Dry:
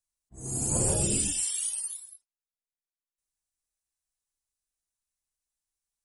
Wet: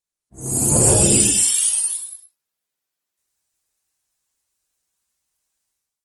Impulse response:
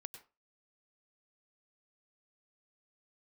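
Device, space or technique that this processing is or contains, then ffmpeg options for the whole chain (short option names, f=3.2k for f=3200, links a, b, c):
far-field microphone of a smart speaker: -filter_complex "[1:a]atrim=start_sample=2205[a];[0:a][a]afir=irnorm=-1:irlink=0,highpass=f=99:p=1,dynaudnorm=f=100:g=7:m=15dB,volume=3.5dB" -ar 48000 -c:a libopus -b:a 24k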